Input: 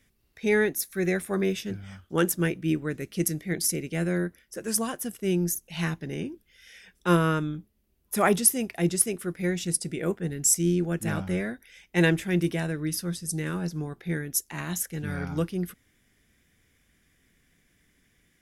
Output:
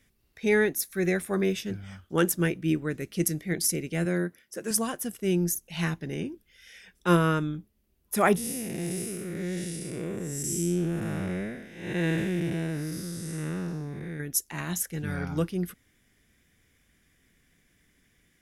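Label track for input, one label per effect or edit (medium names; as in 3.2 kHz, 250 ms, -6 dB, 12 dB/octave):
4.050000	4.710000	high-pass 130 Hz
8.360000	14.200000	spectral blur width 288 ms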